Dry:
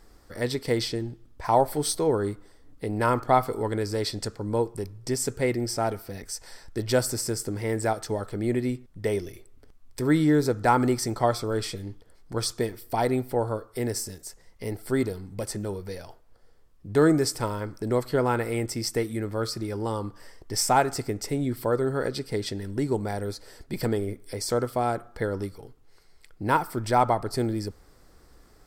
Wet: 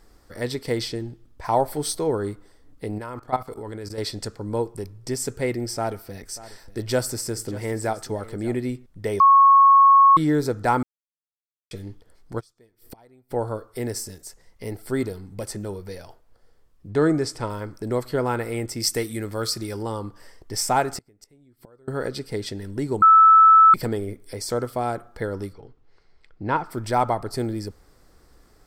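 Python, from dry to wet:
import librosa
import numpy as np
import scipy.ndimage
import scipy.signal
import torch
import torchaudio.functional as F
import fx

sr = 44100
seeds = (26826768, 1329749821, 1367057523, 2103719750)

y = fx.level_steps(x, sr, step_db=17, at=(2.98, 3.98))
y = fx.echo_single(y, sr, ms=589, db=-17.5, at=(5.7, 8.59))
y = fx.gate_flip(y, sr, shuts_db=-30.0, range_db=-29, at=(12.39, 13.3), fade=0.02)
y = fx.air_absorb(y, sr, metres=53.0, at=(16.9, 17.5))
y = fx.high_shelf(y, sr, hz=2500.0, db=9.0, at=(18.8, 19.83))
y = fx.gate_flip(y, sr, shuts_db=-23.0, range_db=-29, at=(20.97, 21.88))
y = fx.air_absorb(y, sr, metres=150.0, at=(25.52, 26.7), fade=0.02)
y = fx.edit(y, sr, fx.bleep(start_s=9.2, length_s=0.97, hz=1100.0, db=-9.5),
    fx.silence(start_s=10.83, length_s=0.88),
    fx.bleep(start_s=23.02, length_s=0.72, hz=1310.0, db=-8.5), tone=tone)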